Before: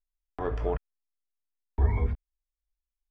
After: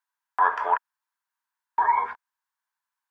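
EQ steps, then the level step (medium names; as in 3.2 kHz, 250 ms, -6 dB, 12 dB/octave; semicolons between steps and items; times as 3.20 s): resonant high-pass 960 Hz, resonance Q 8; peaking EQ 1.6 kHz +12.5 dB 0.4 oct; +4.5 dB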